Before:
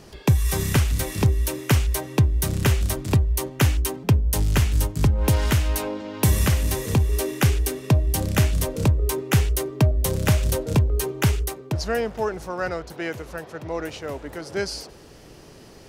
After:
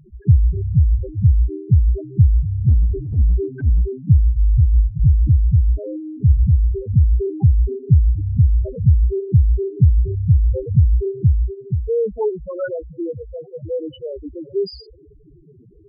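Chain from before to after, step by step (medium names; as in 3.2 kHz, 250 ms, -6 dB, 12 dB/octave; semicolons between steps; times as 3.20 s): loudest bins only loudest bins 2; 2.68–3.82 s: transient shaper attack -12 dB, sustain +4 dB; trim +8 dB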